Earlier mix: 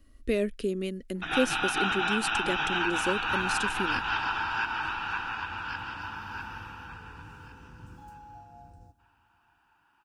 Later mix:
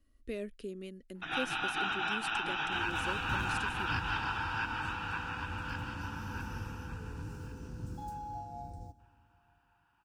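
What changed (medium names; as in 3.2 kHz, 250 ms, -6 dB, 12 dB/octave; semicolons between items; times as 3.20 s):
speech -12.0 dB; first sound -5.5 dB; second sound +6.5 dB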